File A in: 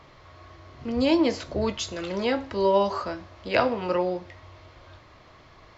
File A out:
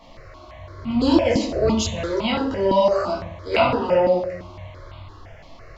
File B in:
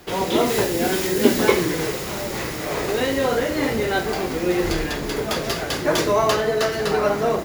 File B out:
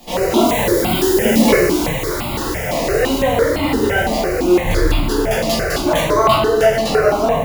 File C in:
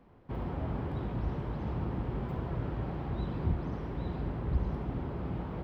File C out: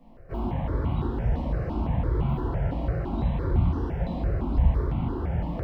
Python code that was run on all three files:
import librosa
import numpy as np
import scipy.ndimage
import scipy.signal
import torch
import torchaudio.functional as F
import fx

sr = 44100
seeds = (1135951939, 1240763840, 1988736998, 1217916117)

p1 = fx.room_shoebox(x, sr, seeds[0], volume_m3=120.0, walls='mixed', distance_m=1.6)
p2 = 10.0 ** (-11.0 / 20.0) * np.tanh(p1 / 10.0 ** (-11.0 / 20.0))
p3 = p1 + (p2 * 10.0 ** (-4.0 / 20.0))
p4 = fx.phaser_held(p3, sr, hz=5.9, low_hz=400.0, high_hz=1700.0)
y = p4 * 10.0 ** (-1.5 / 20.0)